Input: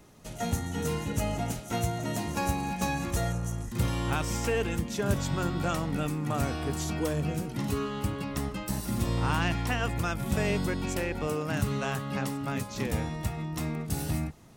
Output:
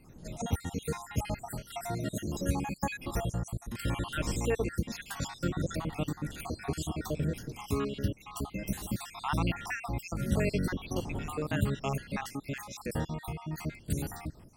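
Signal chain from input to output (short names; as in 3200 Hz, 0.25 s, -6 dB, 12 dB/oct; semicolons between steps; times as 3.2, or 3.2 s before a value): random spectral dropouts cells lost 61%; wind noise 200 Hz -49 dBFS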